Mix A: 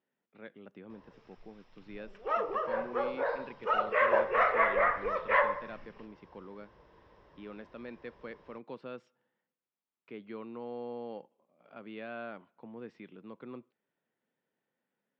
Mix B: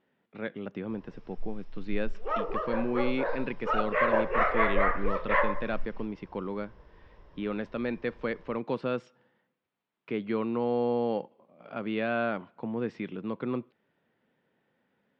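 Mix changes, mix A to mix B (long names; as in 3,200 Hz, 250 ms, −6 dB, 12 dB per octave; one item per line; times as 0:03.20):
speech +12.0 dB
master: remove high-pass filter 180 Hz 6 dB per octave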